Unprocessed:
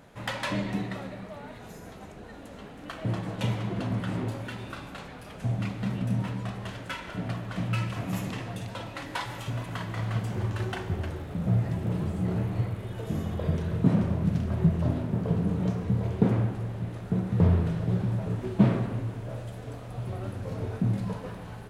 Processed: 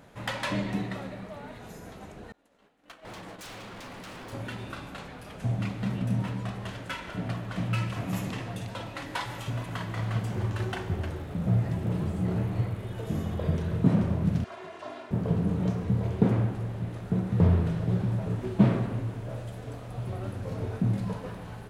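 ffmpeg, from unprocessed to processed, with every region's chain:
ffmpeg -i in.wav -filter_complex "[0:a]asettb=1/sr,asplit=3[link_01][link_02][link_03];[link_01]atrim=end=2.324[link_04];[link_02]atrim=start=2.32:end=4.33,asetpts=PTS-STARTPTS,afade=type=in:duration=0.004:curve=qsin,afade=type=out:start_time=2.006:duration=0.004:curve=qsin,agate=range=-33dB:threshold=-33dB:ratio=3:release=100:detection=peak,equalizer=frequency=83:width=0.49:gain=-14.5,aeval=exprs='0.0126*(abs(mod(val(0)/0.0126+3,4)-2)-1)':channel_layout=same[link_05];[link_03]atrim=start=4.326[link_06];[link_04][link_05]acrossfade=duration=0.004:curve1=hsin:curve2=qsin[link_07];[link_07][link_06]acrossfade=duration=0.004:curve1=qsin:curve2=hsin,asettb=1/sr,asplit=3[link_08][link_09][link_10];[link_08]atrim=end=14.444[link_11];[link_09]atrim=start=14.44:end=15.11,asetpts=PTS-STARTPTS,afade=type=in:duration=0.004:curve=qsin,afade=type=out:start_time=0.666:duration=0.004:curve=qsin,highpass=760,lowpass=6900,aecho=1:1:2.9:0.68,atrim=end_sample=29547[link_12];[link_10]atrim=start=15.106[link_13];[link_11][link_12]acrossfade=duration=0.004:curve1=hsin:curve2=qsin[link_14];[link_14][link_13]acrossfade=duration=0.004:curve1=qsin:curve2=hsin" out.wav

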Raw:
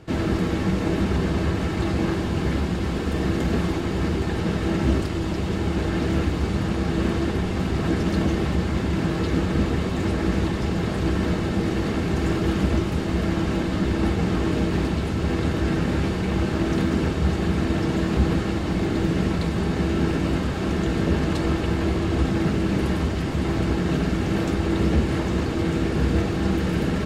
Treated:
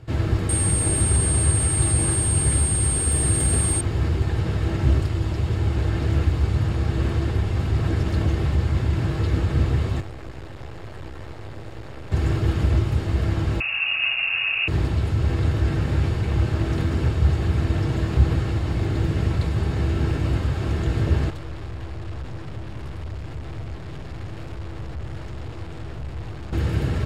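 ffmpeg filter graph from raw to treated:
ffmpeg -i in.wav -filter_complex "[0:a]asettb=1/sr,asplit=3[link_01][link_02][link_03];[link_01]atrim=end=0.494[link_04];[link_02]atrim=start=0.49:end=3.81,asetpts=PTS-STARTPTS,afade=type=in:duration=0.004:curve=qsin,afade=type=out:start_time=3.316:duration=0.004:curve=qsin,aeval=exprs='val(0)+0.0398*sin(2*PI*8600*n/s)':channel_layout=same,aemphasis=mode=production:type=50kf[link_05];[link_03]atrim=start=3.806[link_06];[link_04][link_05]acrossfade=duration=0.004:curve1=hsin:curve2=qsin[link_07];[link_07][link_06]acrossfade=duration=0.004:curve1=qsin:curve2=hsin,asettb=1/sr,asplit=3[link_08][link_09][link_10];[link_08]atrim=end=10.004[link_11];[link_09]atrim=start=10:end=12.12,asetpts=PTS-STARTPTS,afade=type=in:duration=0.004:curve=qsin,afade=type=out:start_time=2.116:duration=0.004:curve=qsin,aeval=exprs='max(val(0),0)':channel_layout=same,acrossover=split=300|2700[link_12][link_13][link_14];[link_12]acompressor=threshold=-38dB:ratio=4[link_15];[link_13]acompressor=threshold=-36dB:ratio=4[link_16];[link_14]acompressor=threshold=-52dB:ratio=4[link_17];[link_15][link_16][link_17]amix=inputs=3:normalize=0[link_18];[link_10]atrim=start=12.116[link_19];[link_11][link_18]acrossfade=duration=0.004:curve1=hsin:curve2=qsin[link_20];[link_20][link_19]acrossfade=duration=0.004:curve1=qsin:curve2=hsin,asettb=1/sr,asplit=3[link_21][link_22][link_23];[link_21]atrim=end=13.604[link_24];[link_22]atrim=start=13.6:end=14.68,asetpts=PTS-STARTPTS,afade=type=in:duration=0.004:curve=qsin,afade=type=out:start_time=1.076:duration=0.004:curve=qsin,equalizer=frequency=360:width_type=o:width=1.6:gain=3.5,lowpass=frequency=2500:width_type=q:width=0.5098,lowpass=frequency=2500:width_type=q:width=0.6013,lowpass=frequency=2500:width_type=q:width=0.9,lowpass=frequency=2500:width_type=q:width=2.563,afreqshift=-2900[link_25];[link_23]atrim=start=14.676[link_26];[link_24][link_25]acrossfade=duration=0.004:curve1=hsin:curve2=qsin[link_27];[link_27][link_26]acrossfade=duration=0.004:curve1=qsin:curve2=hsin,asettb=1/sr,asplit=3[link_28][link_29][link_30];[link_28]atrim=end=21.304[link_31];[link_29]atrim=start=21.3:end=26.53,asetpts=PTS-STARTPTS,afade=type=in:duration=0.004:curve=qsin,afade=type=out:start_time=5.226:duration=0.004:curve=qsin,aeval=exprs='(tanh(44.7*val(0)+0.6)-tanh(0.6))/44.7':channel_layout=same,highshelf=frequency=8000:gain=-6.5[link_32];[link_30]atrim=start=26.526[link_33];[link_31][link_32]acrossfade=duration=0.004:curve1=hsin:curve2=qsin[link_34];[link_34][link_33]acrossfade=duration=0.004:curve1=qsin:curve2=hsin,lowshelf=frequency=150:width_type=q:width=3:gain=6.5,bandreject=frequency=6000:width=18,volume=-3.5dB" out.wav

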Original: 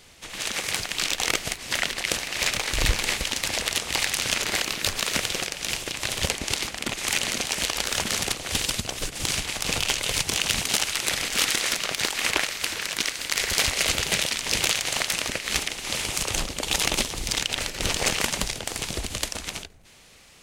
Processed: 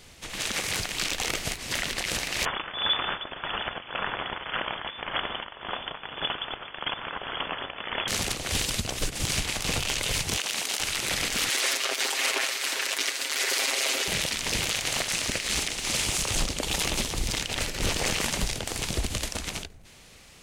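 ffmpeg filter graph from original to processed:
ffmpeg -i in.wav -filter_complex "[0:a]asettb=1/sr,asplit=3[link_01][link_02][link_03];[link_01]atrim=end=2.454[link_04];[link_02]atrim=start=2.45:end=8.08,asetpts=PTS-STARTPTS,afade=type=in:duration=0.004:curve=qsin,afade=type=out:start_time=5.626:duration=0.004:curve=qsin,tremolo=f=1.8:d=0.6,lowpass=frequency=3000:width_type=q:width=0.5098,lowpass=frequency=3000:width_type=q:width=0.6013,lowpass=frequency=3000:width_type=q:width=0.9,lowpass=frequency=3000:width_type=q:width=2.563,afreqshift=-3500[link_05];[link_03]atrim=start=8.076[link_06];[link_04][link_05]acrossfade=duration=0.004:curve1=hsin:curve2=qsin[link_07];[link_07][link_06]acrossfade=duration=0.004:curve1=qsin:curve2=hsin,asettb=1/sr,asplit=3[link_08][link_09][link_10];[link_08]atrim=end=10.384[link_11];[link_09]atrim=start=10.38:end=10.8,asetpts=PTS-STARTPTS,afade=type=in:duration=0.004:curve=qsin,afade=type=out:start_time=0.416:duration=0.004:curve=qsin,highpass=380,acompressor=threshold=-25dB:ratio=2.5:attack=3.2:release=140:knee=1:detection=peak[link_12];[link_10]atrim=start=10.796[link_13];[link_11][link_12]acrossfade=duration=0.004:curve1=hsin:curve2=qsin[link_14];[link_14][link_13]acrossfade=duration=0.004:curve1=qsin:curve2=hsin,asettb=1/sr,asplit=3[link_15][link_16][link_17];[link_15]atrim=end=11.494[link_18];[link_16]atrim=start=11.49:end=14.08,asetpts=PTS-STARTPTS,afade=type=in:duration=0.004:curve=qsin,afade=type=out:start_time=2.586:duration=0.004:curve=qsin,highpass=frequency=320:width=0.5412,highpass=frequency=320:width=1.3066,aecho=1:1:7.5:0.71,atrim=end_sample=114219[link_19];[link_17]atrim=start=14.076[link_20];[link_18][link_19]acrossfade=duration=0.004:curve1=hsin:curve2=qsin[link_21];[link_21][link_20]acrossfade=duration=0.004:curve1=qsin:curve2=hsin,asettb=1/sr,asplit=3[link_22][link_23][link_24];[link_22]atrim=end=15.084[link_25];[link_23]atrim=start=15.08:end=16.59,asetpts=PTS-STARTPTS,afade=type=in:duration=0.004:curve=qsin,afade=type=out:start_time=1.506:duration=0.004:curve=qsin,aemphasis=mode=production:type=cd,adynamicsmooth=sensitivity=4.5:basefreq=7200[link_26];[link_24]atrim=start=16.586[link_27];[link_25][link_26]acrossfade=duration=0.004:curve1=hsin:curve2=qsin[link_28];[link_28][link_27]acrossfade=duration=0.004:curve1=qsin:curve2=hsin,lowshelf=frequency=270:gain=4.5,alimiter=limit=-15.5dB:level=0:latency=1:release=13" out.wav

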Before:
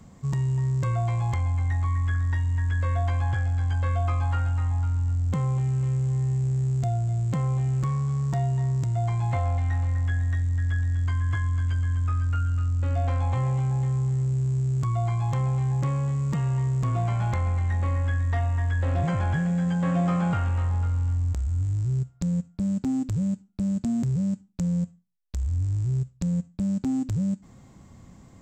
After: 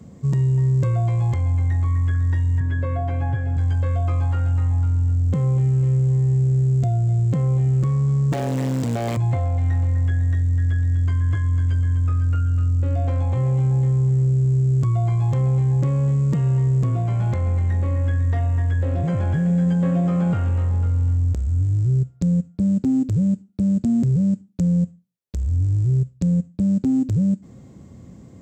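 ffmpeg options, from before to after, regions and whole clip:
ffmpeg -i in.wav -filter_complex "[0:a]asettb=1/sr,asplit=3[link_01][link_02][link_03];[link_01]atrim=end=2.604[link_04];[link_02]atrim=start=2.6:end=3.57,asetpts=PTS-STARTPTS,afade=type=in:duration=0.004:curve=qsin,afade=type=out:start_time=0.966:duration=0.004:curve=qsin,aemphasis=mode=reproduction:type=75kf,bandreject=frequency=1200:width=12,aecho=1:1:7.2:0.95,atrim=end_sample=42777[link_05];[link_03]atrim=start=3.566[link_06];[link_04][link_05]acrossfade=duration=0.004:curve1=hsin:curve2=qsin[link_07];[link_07][link_06]acrossfade=duration=0.004:curve1=qsin:curve2=hsin,asettb=1/sr,asplit=3[link_08][link_09][link_10];[link_08]atrim=end=8.324[link_11];[link_09]atrim=start=8.32:end=9.17,asetpts=PTS-STARTPTS,afade=type=in:duration=0.004:curve=qsin,afade=type=out:start_time=0.846:duration=0.004:curve=qsin,aeval=exprs='max(val(0),0)':channel_layout=same,acrusher=bits=8:mode=log:mix=0:aa=0.000001,asplit=2[link_12][link_13];[link_13]highpass=frequency=720:poles=1,volume=29dB,asoftclip=type=tanh:threshold=-18dB[link_14];[link_12][link_14]amix=inputs=2:normalize=0,lowpass=frequency=5900:poles=1,volume=-6dB[link_15];[link_10]atrim=start=9.166[link_16];[link_11][link_15]acrossfade=duration=0.004:curve1=hsin:curve2=qsin[link_17];[link_17][link_16]acrossfade=duration=0.004:curve1=qsin:curve2=hsin,lowshelf=frequency=650:width_type=q:width=1.5:gain=7,alimiter=limit=-14dB:level=0:latency=1:release=212,highpass=68" out.wav

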